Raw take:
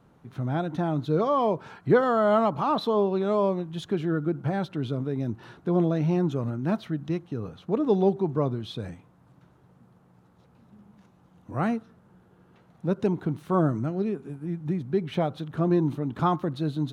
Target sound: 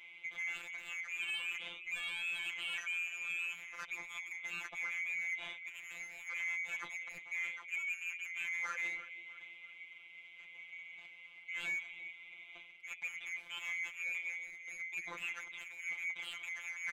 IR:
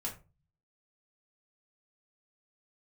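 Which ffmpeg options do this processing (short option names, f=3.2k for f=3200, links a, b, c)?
-filter_complex "[0:a]afftfilt=real='real(if(lt(b,920),b+92*(1-2*mod(floor(b/92),2)),b),0)':imag='imag(if(lt(b,920),b+92*(1-2*mod(floor(b/92),2)),b),0)':win_size=2048:overlap=0.75,areverse,acompressor=threshold=-34dB:ratio=6,areverse,asplit=2[a][b];[b]adelay=327,lowpass=f=2.4k:p=1,volume=-17dB,asplit=2[c][d];[d]adelay=327,lowpass=f=2.4k:p=1,volume=0.46,asplit=2[e][f];[f]adelay=327,lowpass=f=2.4k:p=1,volume=0.46,asplit=2[g][h];[h]adelay=327,lowpass=f=2.4k:p=1,volume=0.46[i];[a][c][e][g][i]amix=inputs=5:normalize=0,asplit=2[j][k];[k]aeval=exprs='0.0531*sin(PI/2*3.16*val(0)/0.0531)':c=same,volume=-10dB[l];[j][l]amix=inputs=2:normalize=0,asplit=2[m][n];[n]highpass=f=720:p=1,volume=8dB,asoftclip=type=tanh:threshold=-28.5dB[o];[m][o]amix=inputs=2:normalize=0,lowpass=f=1.3k:p=1,volume=-6dB,afftfilt=real='hypot(re,im)*cos(PI*b)':imag='0':win_size=1024:overlap=0.75,volume=2dB"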